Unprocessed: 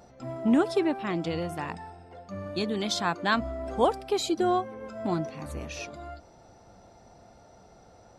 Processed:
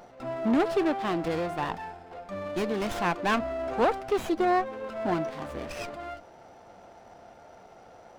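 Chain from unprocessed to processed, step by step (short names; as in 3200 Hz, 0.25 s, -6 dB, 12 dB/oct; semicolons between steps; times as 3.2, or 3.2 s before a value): overdrive pedal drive 18 dB, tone 2200 Hz, clips at -10 dBFS; running maximum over 9 samples; gain -4 dB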